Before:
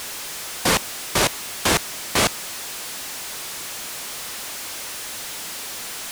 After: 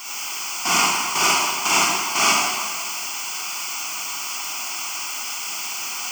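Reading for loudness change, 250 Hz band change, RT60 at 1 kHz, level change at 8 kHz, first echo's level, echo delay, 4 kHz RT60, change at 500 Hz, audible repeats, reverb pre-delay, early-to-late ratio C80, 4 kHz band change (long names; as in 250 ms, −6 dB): +3.5 dB, −3.5 dB, 1.7 s, +4.5 dB, no echo audible, no echo audible, 1.4 s, −5.0 dB, no echo audible, 33 ms, −1.0 dB, +3.5 dB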